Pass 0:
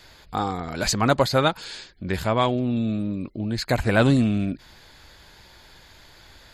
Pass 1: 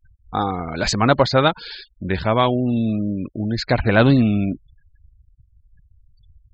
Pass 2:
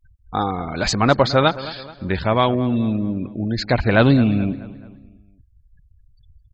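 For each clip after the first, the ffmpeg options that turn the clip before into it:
ffmpeg -i in.wav -filter_complex "[0:a]acrossover=split=6800[link_01][link_02];[link_02]acompressor=threshold=-60dB:ratio=4:attack=1:release=60[link_03];[link_01][link_03]amix=inputs=2:normalize=0,afftfilt=real='re*gte(hypot(re,im),0.0141)':imag='im*gte(hypot(re,im),0.0141)':win_size=1024:overlap=0.75,volume=4dB" out.wav
ffmpeg -i in.wav -filter_complex "[0:a]asplit=2[link_01][link_02];[link_02]adelay=215,lowpass=frequency=4000:poles=1,volume=-16dB,asplit=2[link_03][link_04];[link_04]adelay=215,lowpass=frequency=4000:poles=1,volume=0.47,asplit=2[link_05][link_06];[link_06]adelay=215,lowpass=frequency=4000:poles=1,volume=0.47,asplit=2[link_07][link_08];[link_08]adelay=215,lowpass=frequency=4000:poles=1,volume=0.47[link_09];[link_01][link_03][link_05][link_07][link_09]amix=inputs=5:normalize=0" out.wav

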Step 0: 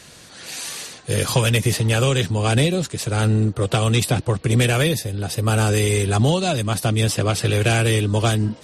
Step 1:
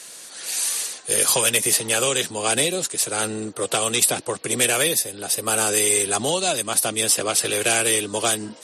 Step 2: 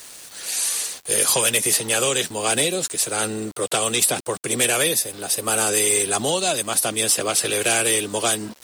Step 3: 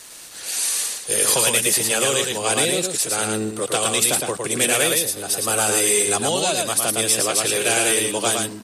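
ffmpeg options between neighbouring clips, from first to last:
ffmpeg -i in.wav -af "highpass=350,equalizer=frequency=10000:width=0.73:gain=12.5,volume=-1dB" out.wav
ffmpeg -i in.wav -af "aeval=exprs='val(0)*gte(abs(val(0)),0.0119)':channel_layout=same,acontrast=80,volume=-6dB" out.wav
ffmpeg -i in.wav -filter_complex "[0:a]asplit=2[link_01][link_02];[link_02]aecho=0:1:111:0.668[link_03];[link_01][link_03]amix=inputs=2:normalize=0" -ar 32000 -c:a libmp3lame -b:a 128k out.mp3

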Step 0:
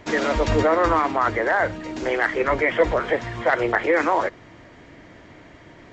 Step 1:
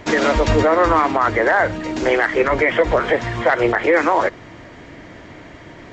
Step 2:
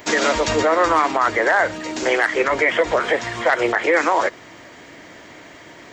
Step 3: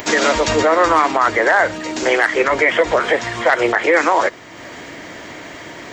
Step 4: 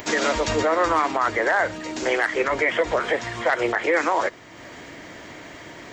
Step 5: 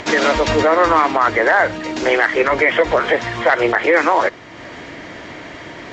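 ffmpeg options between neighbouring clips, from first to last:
ffmpeg -i in.wav -af "alimiter=limit=-13dB:level=0:latency=1:release=128,volume=7dB" out.wav
ffmpeg -i in.wav -af "aemphasis=mode=production:type=bsi,volume=-1dB" out.wav
ffmpeg -i in.wav -af "acompressor=mode=upward:threshold=-29dB:ratio=2.5,volume=3dB" out.wav
ffmpeg -i in.wav -af "lowshelf=frequency=140:gain=4.5,volume=-7dB" out.wav
ffmpeg -i in.wav -af "lowpass=4900,volume=7dB" out.wav

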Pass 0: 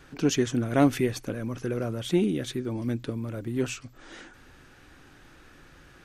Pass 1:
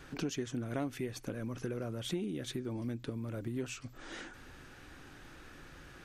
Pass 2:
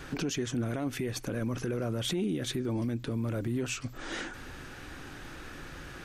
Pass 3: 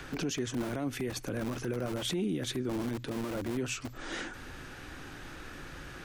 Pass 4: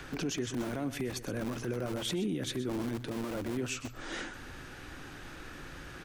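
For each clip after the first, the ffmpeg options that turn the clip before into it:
ffmpeg -i in.wav -af "acompressor=threshold=-36dB:ratio=4" out.wav
ffmpeg -i in.wav -af "alimiter=level_in=8dB:limit=-24dB:level=0:latency=1:release=17,volume=-8dB,volume=8.5dB" out.wav
ffmpeg -i in.wav -filter_complex "[0:a]acrossover=split=140|650|4700[link_01][link_02][link_03][link_04];[link_01]aeval=exprs='(mod(66.8*val(0)+1,2)-1)/66.8':channel_layout=same[link_05];[link_03]acompressor=mode=upward:threshold=-46dB:ratio=2.5[link_06];[link_05][link_02][link_06][link_04]amix=inputs=4:normalize=0,volume=-1dB" out.wav
ffmpeg -i in.wav -af "aecho=1:1:126:0.2,volume=-1dB" out.wav

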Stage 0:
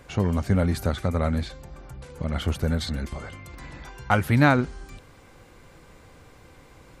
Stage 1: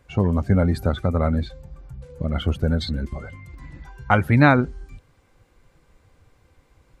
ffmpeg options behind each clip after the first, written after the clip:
ffmpeg -i in.wav -af "afftdn=noise_reduction=14:noise_floor=-34,volume=3.5dB" out.wav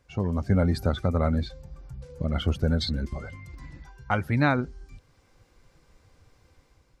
ffmpeg -i in.wav -af "equalizer=frequency=5300:width=1.9:gain=7.5,dynaudnorm=framelen=120:gausssize=7:maxgain=6dB,volume=-8dB" out.wav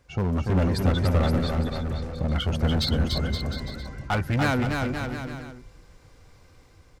ffmpeg -i in.wav -filter_complex "[0:a]asoftclip=type=hard:threshold=-24.5dB,asplit=2[link_01][link_02];[link_02]aecho=0:1:290|522|707.6|856.1|974.9:0.631|0.398|0.251|0.158|0.1[link_03];[link_01][link_03]amix=inputs=2:normalize=0,volume=4dB" out.wav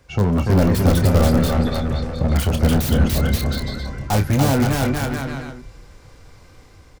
ffmpeg -i in.wav -filter_complex "[0:a]acrossover=split=310|1000[link_01][link_02][link_03];[link_03]aeval=exprs='(mod(31.6*val(0)+1,2)-1)/31.6':channel_layout=same[link_04];[link_01][link_02][link_04]amix=inputs=3:normalize=0,asplit=2[link_05][link_06];[link_06]adelay=29,volume=-9dB[link_07];[link_05][link_07]amix=inputs=2:normalize=0,volume=7dB" out.wav

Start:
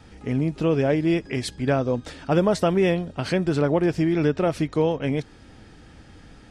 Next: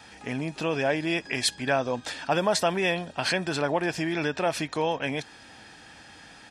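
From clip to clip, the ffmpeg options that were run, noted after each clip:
ffmpeg -i in.wav -filter_complex "[0:a]asplit=2[link_01][link_02];[link_02]alimiter=limit=-19dB:level=0:latency=1:release=36,volume=1dB[link_03];[link_01][link_03]amix=inputs=2:normalize=0,highpass=frequency=940:poles=1,aecho=1:1:1.2:0.35" out.wav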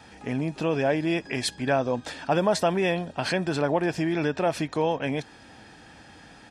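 ffmpeg -i in.wav -af "tiltshelf=frequency=970:gain=4" out.wav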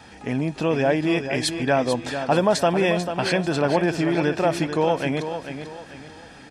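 ffmpeg -i in.wav -af "aecho=1:1:442|884|1326|1768:0.355|0.124|0.0435|0.0152,volume=3.5dB" out.wav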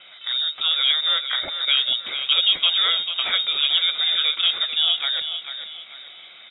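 ffmpeg -i in.wav -af "lowpass=frequency=3300:width_type=q:width=0.5098,lowpass=frequency=3300:width_type=q:width=0.6013,lowpass=frequency=3300:width_type=q:width=0.9,lowpass=frequency=3300:width_type=q:width=2.563,afreqshift=-3900" out.wav

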